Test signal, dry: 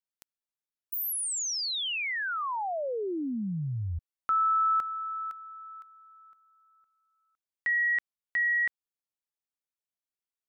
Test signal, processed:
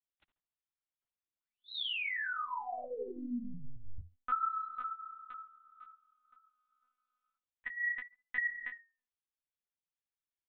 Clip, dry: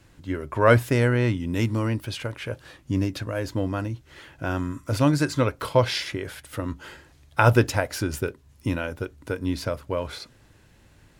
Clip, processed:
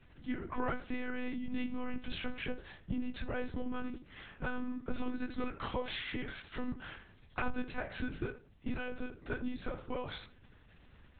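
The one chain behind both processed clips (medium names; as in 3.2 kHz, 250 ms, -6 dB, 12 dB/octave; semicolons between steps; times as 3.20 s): peaking EQ 560 Hz -4.5 dB 1.1 oct; compression 6:1, threshold -28 dBFS; chorus 0.39 Hz, delay 17 ms, depth 5.3 ms; on a send: tape echo 71 ms, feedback 31%, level -10.5 dB, low-pass 1.8 kHz; on the sum: monotone LPC vocoder at 8 kHz 250 Hz; trim -1.5 dB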